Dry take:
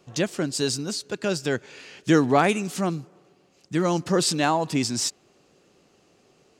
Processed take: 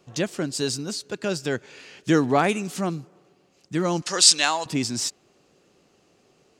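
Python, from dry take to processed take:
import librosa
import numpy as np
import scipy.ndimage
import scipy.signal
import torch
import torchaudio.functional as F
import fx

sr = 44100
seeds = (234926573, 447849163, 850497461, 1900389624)

y = fx.weighting(x, sr, curve='ITU-R 468', at=(4.02, 4.66))
y = F.gain(torch.from_numpy(y), -1.0).numpy()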